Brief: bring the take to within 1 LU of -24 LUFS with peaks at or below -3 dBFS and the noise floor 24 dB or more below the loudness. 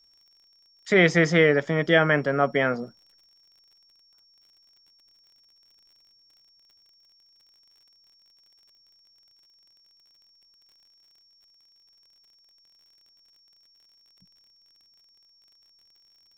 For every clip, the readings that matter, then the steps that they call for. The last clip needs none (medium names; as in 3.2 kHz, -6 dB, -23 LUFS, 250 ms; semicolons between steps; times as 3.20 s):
tick rate 48 per s; steady tone 5.5 kHz; tone level -58 dBFS; loudness -21.0 LUFS; peak level -6.5 dBFS; loudness target -24.0 LUFS
-> de-click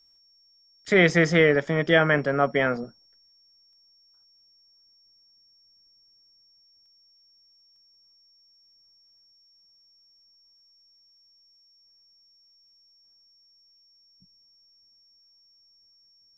tick rate 0.31 per s; steady tone 5.5 kHz; tone level -58 dBFS
-> band-stop 5.5 kHz, Q 30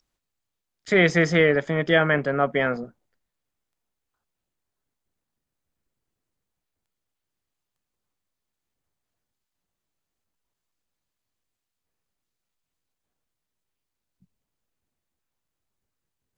steady tone not found; loudness -21.0 LUFS; peak level -6.5 dBFS; loudness target -24.0 LUFS
-> trim -3 dB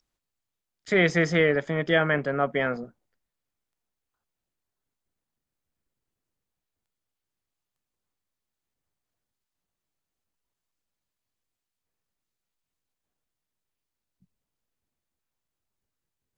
loudness -24.0 LUFS; peak level -9.5 dBFS; noise floor -87 dBFS